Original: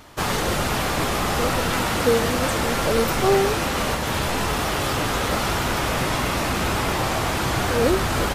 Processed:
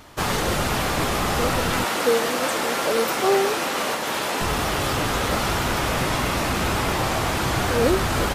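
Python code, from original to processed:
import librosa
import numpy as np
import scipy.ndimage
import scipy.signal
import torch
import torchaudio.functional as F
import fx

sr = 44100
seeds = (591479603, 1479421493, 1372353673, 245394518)

y = fx.highpass(x, sr, hz=290.0, slope=12, at=(1.84, 4.41))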